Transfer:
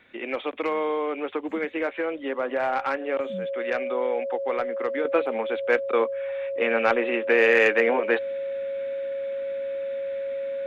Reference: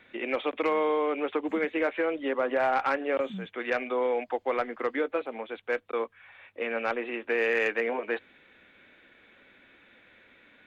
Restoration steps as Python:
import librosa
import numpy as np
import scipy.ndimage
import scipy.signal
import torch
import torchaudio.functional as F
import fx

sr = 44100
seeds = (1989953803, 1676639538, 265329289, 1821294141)

y = fx.notch(x, sr, hz=550.0, q=30.0)
y = fx.gain(y, sr, db=fx.steps((0.0, 0.0), (5.05, -7.5)))